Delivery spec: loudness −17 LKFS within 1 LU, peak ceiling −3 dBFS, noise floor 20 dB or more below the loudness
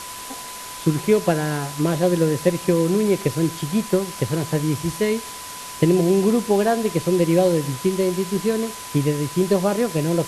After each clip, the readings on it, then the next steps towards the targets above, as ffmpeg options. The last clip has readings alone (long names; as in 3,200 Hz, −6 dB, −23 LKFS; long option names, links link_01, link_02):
interfering tone 1,000 Hz; level of the tone −37 dBFS; background noise floor −35 dBFS; target noise floor −41 dBFS; integrated loudness −21.0 LKFS; sample peak −3.5 dBFS; target loudness −17.0 LKFS
→ -af "bandreject=frequency=1000:width=30"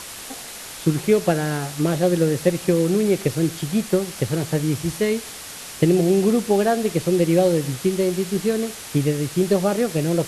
interfering tone none found; background noise floor −36 dBFS; target noise floor −41 dBFS
→ -af "afftdn=noise_reduction=6:noise_floor=-36"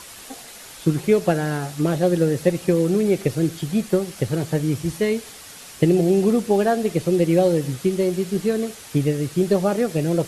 background noise floor −41 dBFS; integrated loudness −21.0 LKFS; sample peak −3.5 dBFS; target loudness −17.0 LKFS
→ -af "volume=4dB,alimiter=limit=-3dB:level=0:latency=1"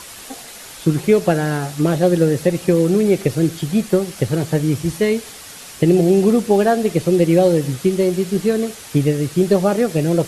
integrated loudness −17.0 LKFS; sample peak −3.0 dBFS; background noise floor −37 dBFS